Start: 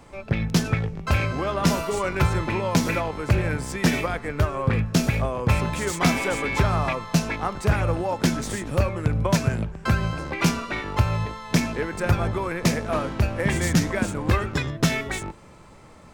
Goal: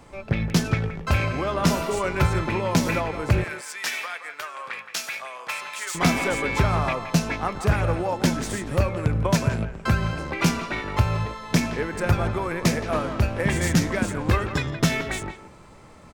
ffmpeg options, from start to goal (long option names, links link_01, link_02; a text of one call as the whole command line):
ffmpeg -i in.wav -filter_complex "[0:a]asettb=1/sr,asplit=3[link_01][link_02][link_03];[link_01]atrim=end=3.444[link_04];[link_02]atrim=start=3.44:end=5.95,asetpts=PTS-STARTPTS,afade=type=in:duration=0.004:curve=qsin,afade=type=out:start_time=2.506:duration=0.004:curve=qsin,highpass=1300[link_05];[link_03]atrim=start=5.946[link_06];[link_04][link_05]acrossfade=duration=0.004:curve1=hsin:curve2=qsin[link_07];[link_07][link_06]acrossfade=duration=0.004:curve1=qsin:curve2=hsin,asplit=2[link_08][link_09];[link_09]adelay=170,highpass=300,lowpass=3400,asoftclip=type=hard:threshold=-17.5dB,volume=-10dB[link_10];[link_08][link_10]amix=inputs=2:normalize=0" out.wav